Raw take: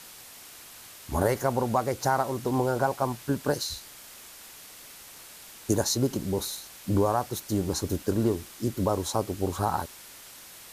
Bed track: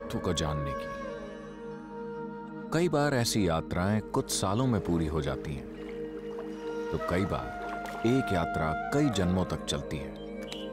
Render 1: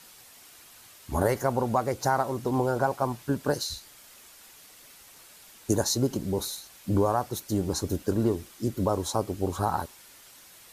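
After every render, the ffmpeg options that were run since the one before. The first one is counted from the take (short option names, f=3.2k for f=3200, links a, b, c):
-af "afftdn=nr=6:nf=-48"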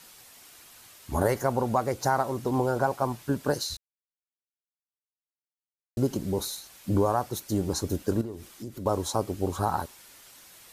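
-filter_complex "[0:a]asettb=1/sr,asplit=3[a][b][c];[a]atrim=end=8.214[d];[b]atrim=start=8.21:end=8.86,asetpts=PTS-STARTPTS,afade=t=in:d=0.004:c=qsin,afade=t=out:st=0.646:d=0.004:c=qsin,acompressor=threshold=-37dB:ratio=3:attack=3.2:release=140:knee=1:detection=peak[e];[c]atrim=start=8.856[f];[d][e]acrossfade=d=0.004:c1=hsin:c2=qsin[g];[g][f]acrossfade=d=0.004:c1=qsin:c2=hsin,asplit=3[h][i][j];[h]atrim=end=3.77,asetpts=PTS-STARTPTS,afade=t=out:st=3.766:d=0.004:c=hsin[k];[i]atrim=start=3.77:end=5.97,asetpts=PTS-STARTPTS,volume=0[l];[j]atrim=start=5.97,asetpts=PTS-STARTPTS,afade=t=in:d=0.004:c=hsin[m];[k][l][m]concat=n=3:v=0:a=1"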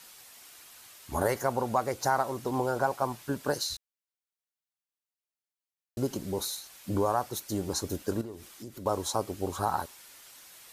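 -af "lowshelf=f=410:g=-7"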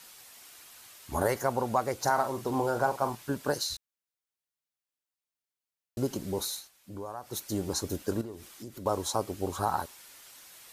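-filter_complex "[0:a]asettb=1/sr,asplit=3[a][b][c];[a]atrim=end=2.034[d];[b]atrim=start=2.03:end=3.15,asetpts=PTS-STARTPTS,afade=t=in:d=0.004:c=qsin,afade=t=out:st=1.116:d=0.004:c=qsin,asplit=2[e][f];[f]adelay=42,volume=-9.5dB[g];[e][g]amix=inputs=2:normalize=0,atrim=end_sample=49392[h];[c]atrim=start=3.146[i];[d][h]acrossfade=d=0.004:c1=hsin:c2=qsin[j];[j][i]acrossfade=d=0.004:c1=qsin:c2=hsin,asplit=3[k][l][m];[k]atrim=end=6.71,asetpts=PTS-STARTPTS,afade=t=out:st=6.57:d=0.14:silence=0.237137[n];[l]atrim=start=6.71:end=7.22,asetpts=PTS-STARTPTS,volume=-12.5dB[o];[m]atrim=start=7.22,asetpts=PTS-STARTPTS,afade=t=in:d=0.14:silence=0.237137[p];[n][o][p]concat=n=3:v=0:a=1"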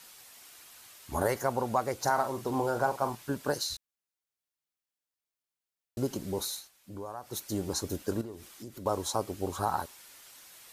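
-af "volume=-1dB"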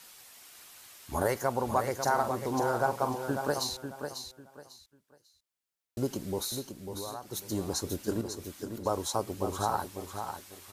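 -af "aecho=1:1:546|1092|1638:0.422|0.105|0.0264"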